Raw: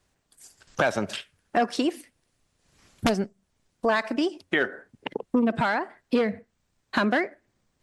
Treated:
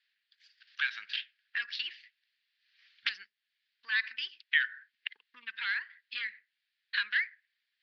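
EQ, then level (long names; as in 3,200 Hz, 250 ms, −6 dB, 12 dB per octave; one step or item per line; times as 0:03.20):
elliptic band-pass filter 1,700–4,700 Hz, stop band 50 dB
high-frequency loss of the air 120 metres
parametric band 3,600 Hz +3 dB 0.55 octaves
+1.5 dB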